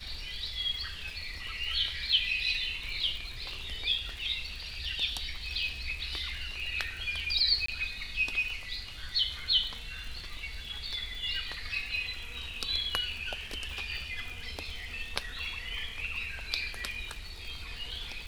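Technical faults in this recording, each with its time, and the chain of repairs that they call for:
surface crackle 55 per second −38 dBFS
0:07.66–0:07.68: drop-out 24 ms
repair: click removal
repair the gap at 0:07.66, 24 ms

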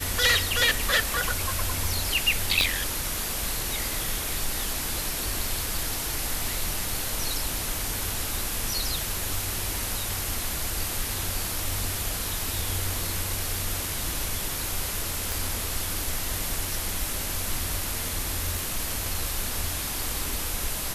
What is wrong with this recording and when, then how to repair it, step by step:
0:02.61: click −8 dBFS
0:15.32: click
0:18.59: click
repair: click removal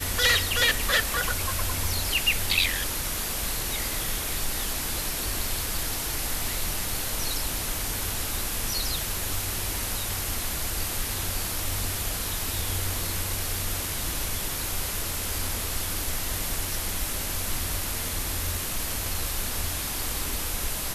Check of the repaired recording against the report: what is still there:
0:02.61: click

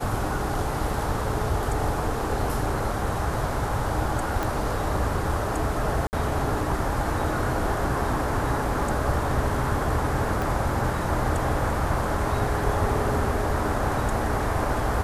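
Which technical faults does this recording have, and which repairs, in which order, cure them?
0:04.43: click
0:06.07–0:06.13: drop-out 59 ms
0:10.42: click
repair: click removal
repair the gap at 0:06.07, 59 ms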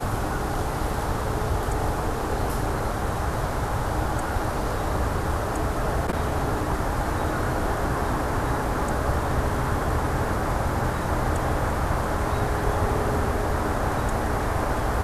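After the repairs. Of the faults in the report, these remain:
0:10.42: click

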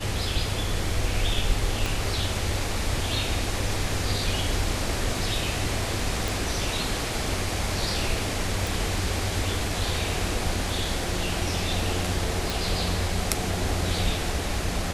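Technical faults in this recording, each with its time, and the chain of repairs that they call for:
0:01.86: click
0:06.28: click
0:08.67: click
0:12.50: click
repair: click removal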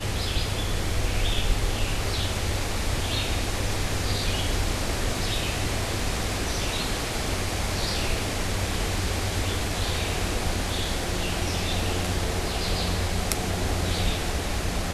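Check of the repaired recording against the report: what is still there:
0:01.86: click

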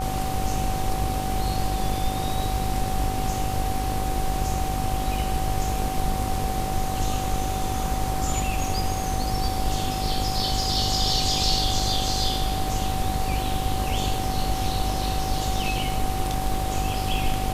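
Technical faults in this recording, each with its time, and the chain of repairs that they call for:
mains buzz 50 Hz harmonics 25 −30 dBFS
surface crackle 25 per second −32 dBFS
whistle 760 Hz −29 dBFS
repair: click removal
hum removal 50 Hz, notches 25
notch filter 760 Hz, Q 30

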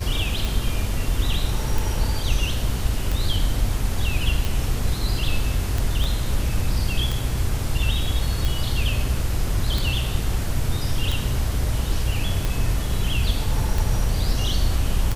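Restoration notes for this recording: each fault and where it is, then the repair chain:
scratch tick 45 rpm
0:06.04: click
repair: click removal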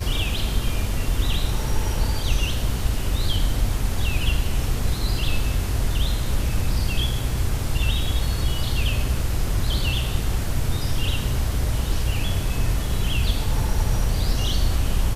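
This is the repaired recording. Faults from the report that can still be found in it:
0:06.04: click

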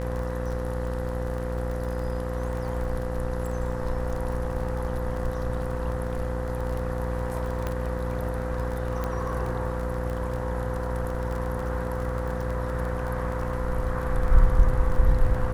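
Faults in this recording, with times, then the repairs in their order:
mains buzz 60 Hz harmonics 33 −30 dBFS
surface crackle 22 per second −31 dBFS
whistle 510 Hz −33 dBFS
0:07.67: click −16 dBFS
0:09.04: click −17 dBFS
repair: click removal
notch filter 510 Hz, Q 30
hum removal 60 Hz, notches 33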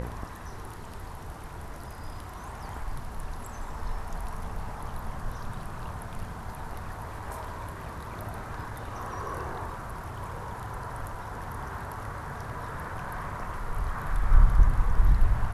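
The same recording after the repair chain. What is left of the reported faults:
none of them is left

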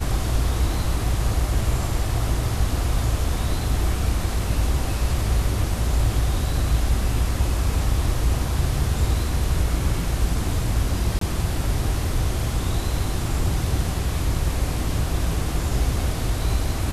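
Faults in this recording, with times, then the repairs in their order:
0:11.19–0:11.21: drop-out 23 ms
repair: repair the gap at 0:11.19, 23 ms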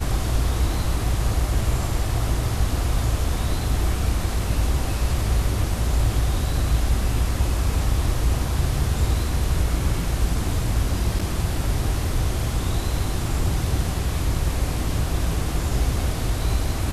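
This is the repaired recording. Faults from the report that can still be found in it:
none of them is left

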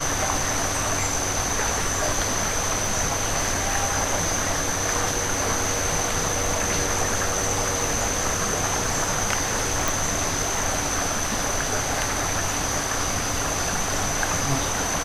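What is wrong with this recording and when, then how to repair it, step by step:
surface crackle 29 per second −32 dBFS
0:09.88: click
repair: click removal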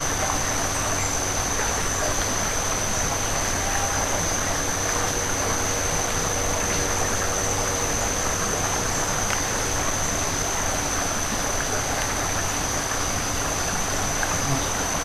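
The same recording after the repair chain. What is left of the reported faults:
none of them is left

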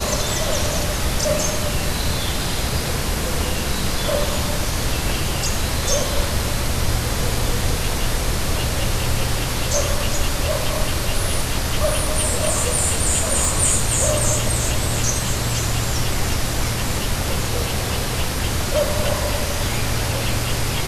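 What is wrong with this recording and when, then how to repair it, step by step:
0:13.45: click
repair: click removal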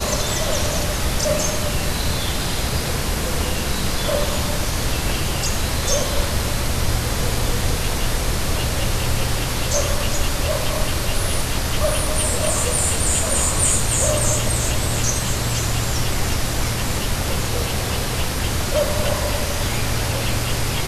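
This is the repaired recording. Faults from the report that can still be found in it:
0:13.45: click

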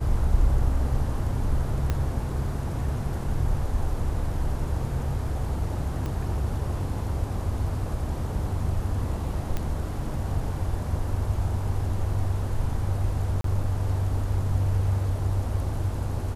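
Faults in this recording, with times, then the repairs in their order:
0:01.90: click −13 dBFS
0:06.06: click −20 dBFS
0:09.57: click −16 dBFS
0:13.41–0:13.44: drop-out 33 ms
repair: click removal
repair the gap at 0:13.41, 33 ms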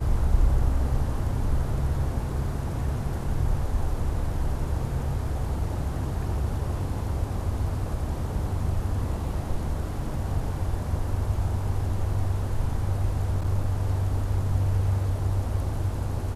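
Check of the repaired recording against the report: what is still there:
0:01.90: click
0:06.06: click

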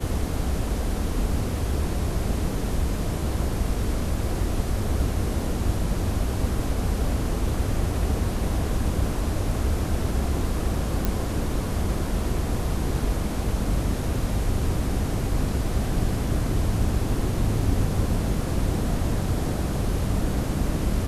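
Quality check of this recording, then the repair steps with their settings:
0:11.05: click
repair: click removal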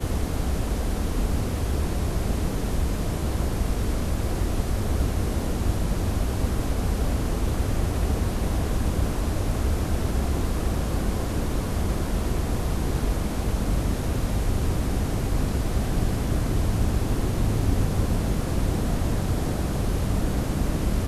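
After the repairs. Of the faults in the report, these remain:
none of them is left

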